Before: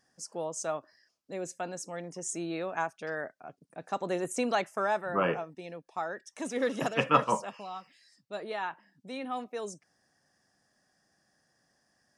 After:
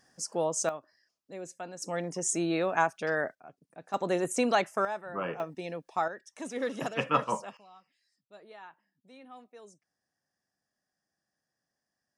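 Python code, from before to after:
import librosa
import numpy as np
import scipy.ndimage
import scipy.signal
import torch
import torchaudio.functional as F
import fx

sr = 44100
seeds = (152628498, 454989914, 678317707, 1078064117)

y = fx.gain(x, sr, db=fx.steps((0.0, 6.0), (0.69, -4.5), (1.82, 6.0), (3.35, -4.5), (3.94, 3.0), (4.85, -6.5), (5.4, 5.0), (6.08, -3.0), (7.57, -14.0)))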